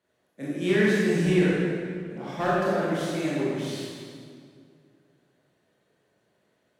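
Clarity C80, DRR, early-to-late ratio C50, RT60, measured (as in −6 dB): −1.5 dB, −8.5 dB, −4.0 dB, 2.1 s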